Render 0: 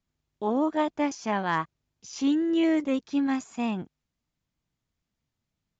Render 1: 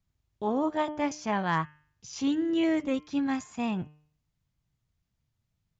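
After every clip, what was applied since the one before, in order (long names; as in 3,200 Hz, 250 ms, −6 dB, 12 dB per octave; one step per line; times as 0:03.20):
low shelf with overshoot 180 Hz +7 dB, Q 1.5
hum removal 150.6 Hz, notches 22
level −1 dB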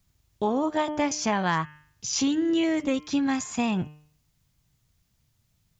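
high-shelf EQ 4,000 Hz +8.5 dB
downward compressor 6 to 1, threshold −30 dBFS, peak gain reduction 8 dB
level +8.5 dB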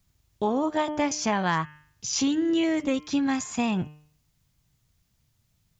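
no processing that can be heard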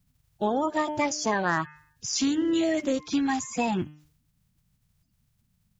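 spectral magnitudes quantised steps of 30 dB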